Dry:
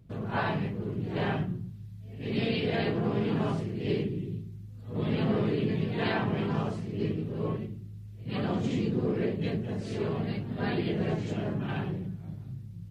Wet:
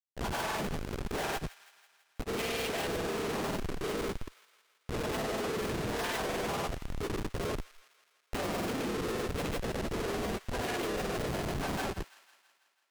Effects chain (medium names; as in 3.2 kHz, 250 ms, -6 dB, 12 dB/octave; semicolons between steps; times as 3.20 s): high-pass 560 Hz 12 dB/octave; Schmitt trigger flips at -40.5 dBFS; granulator; on a send: feedback echo behind a high-pass 164 ms, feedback 61%, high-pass 1.4 kHz, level -16 dB; on the sum: trim +7 dB